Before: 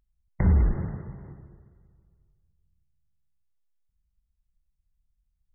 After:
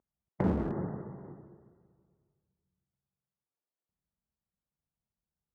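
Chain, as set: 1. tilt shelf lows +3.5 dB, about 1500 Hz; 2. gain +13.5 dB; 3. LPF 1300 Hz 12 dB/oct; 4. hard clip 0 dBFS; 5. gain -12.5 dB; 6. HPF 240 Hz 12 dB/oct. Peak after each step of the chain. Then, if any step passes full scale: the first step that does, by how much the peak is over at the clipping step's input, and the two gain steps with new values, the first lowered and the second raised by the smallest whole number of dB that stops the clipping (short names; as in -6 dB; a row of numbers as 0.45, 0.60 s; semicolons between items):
-9.5, +4.0, +4.0, 0.0, -12.5, -16.5 dBFS; step 2, 4.0 dB; step 2 +9.5 dB, step 5 -8.5 dB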